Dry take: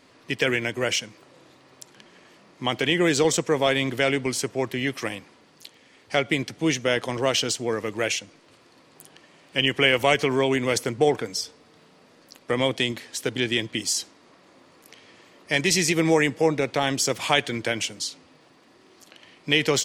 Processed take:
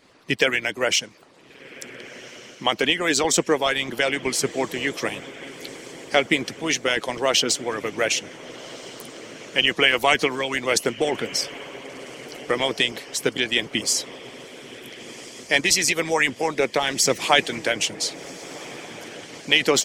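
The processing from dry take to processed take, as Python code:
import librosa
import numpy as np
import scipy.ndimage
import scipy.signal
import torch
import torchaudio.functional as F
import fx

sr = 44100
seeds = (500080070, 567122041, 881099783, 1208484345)

y = fx.echo_diffused(x, sr, ms=1468, feedback_pct=56, wet_db=-14)
y = fx.hpss(y, sr, part='harmonic', gain_db=-16)
y = y * librosa.db_to_amplitude(5.0)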